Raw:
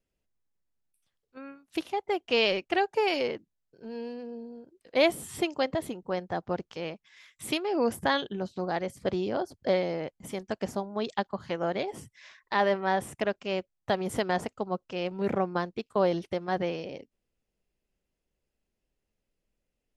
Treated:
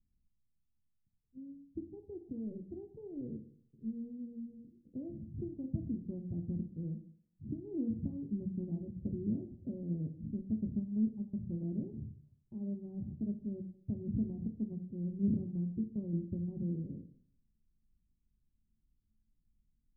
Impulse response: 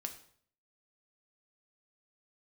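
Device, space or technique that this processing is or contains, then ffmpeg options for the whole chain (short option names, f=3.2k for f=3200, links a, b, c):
club heard from the street: -filter_complex "[0:a]alimiter=limit=-20.5dB:level=0:latency=1:release=240,lowpass=f=210:w=0.5412,lowpass=f=210:w=1.3066[a];[1:a]atrim=start_sample=2205[b];[a][b]afir=irnorm=-1:irlink=0,volume=9dB"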